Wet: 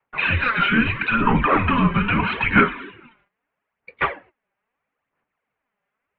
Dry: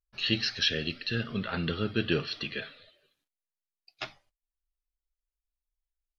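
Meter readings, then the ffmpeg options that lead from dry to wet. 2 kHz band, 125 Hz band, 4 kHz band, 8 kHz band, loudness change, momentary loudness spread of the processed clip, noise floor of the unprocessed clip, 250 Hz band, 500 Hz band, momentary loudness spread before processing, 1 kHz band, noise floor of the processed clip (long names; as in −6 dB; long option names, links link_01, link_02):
+15.5 dB, +11.0 dB, −1.0 dB, can't be measured, +11.0 dB, 8 LU, below −85 dBFS, +12.5 dB, +8.0 dB, 14 LU, +23.5 dB, −82 dBFS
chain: -filter_complex "[0:a]bandreject=frequency=580:width=12,adynamicequalizer=threshold=0.00282:dfrequency=520:dqfactor=4.6:tfrequency=520:tqfactor=4.6:attack=5:release=100:ratio=0.375:range=3:mode=boostabove:tftype=bell,acompressor=threshold=-28dB:ratio=12,asplit=2[link_01][link_02];[link_02]highpass=frequency=720:poles=1,volume=9dB,asoftclip=type=tanh:threshold=-18dB[link_03];[link_01][link_03]amix=inputs=2:normalize=0,lowpass=frequency=1700:poles=1,volume=-6dB,apsyclip=35.5dB,aphaser=in_gain=1:out_gain=1:delay=4.9:decay=0.55:speed=0.77:type=sinusoidal,highpass=frequency=280:width_type=q:width=0.5412,highpass=frequency=280:width_type=q:width=1.307,lowpass=frequency=2700:width_type=q:width=0.5176,lowpass=frequency=2700:width_type=q:width=0.7071,lowpass=frequency=2700:width_type=q:width=1.932,afreqshift=-240,volume=-13dB"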